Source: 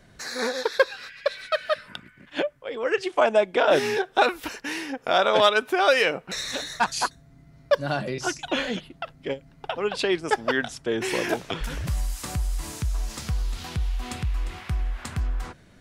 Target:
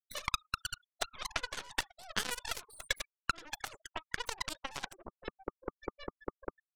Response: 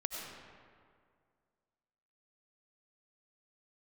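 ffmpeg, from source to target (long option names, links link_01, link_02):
-af "highpass=frequency=140:width=0.5412,highpass=frequency=140:width=1.3066,aecho=1:1:83|166|249|332|415:0.158|0.0808|0.0412|0.021|0.0107,asetrate=103194,aresample=44100,afftfilt=real='re*gte(hypot(re,im),0.0562)':imag='im*gte(hypot(re,im),0.0562)':win_size=1024:overlap=0.75,acompressor=threshold=-40dB:ratio=8,aeval=exprs='0.0708*(cos(1*acos(clip(val(0)/0.0708,-1,1)))-cos(1*PI/2))+0.0316*(cos(2*acos(clip(val(0)/0.0708,-1,1)))-cos(2*PI/2))+0.0126*(cos(7*acos(clip(val(0)/0.0708,-1,1)))-cos(7*PI/2))':channel_layout=same,bandreject=frequency=1200:width=20,volume=9dB"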